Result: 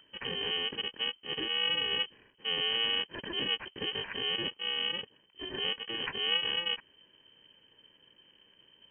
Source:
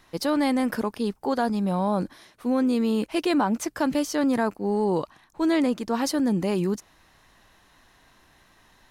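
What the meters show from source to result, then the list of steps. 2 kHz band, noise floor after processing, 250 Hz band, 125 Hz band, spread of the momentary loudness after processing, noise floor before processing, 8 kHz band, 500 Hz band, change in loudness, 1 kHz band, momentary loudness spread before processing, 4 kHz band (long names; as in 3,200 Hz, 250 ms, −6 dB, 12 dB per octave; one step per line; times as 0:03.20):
0.0 dB, −66 dBFS, −24.5 dB, −18.0 dB, 9 LU, −59 dBFS, below −40 dB, −15.0 dB, −6.5 dB, −15.5 dB, 6 LU, +11.0 dB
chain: samples in bit-reversed order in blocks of 128 samples
voice inversion scrambler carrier 3,100 Hz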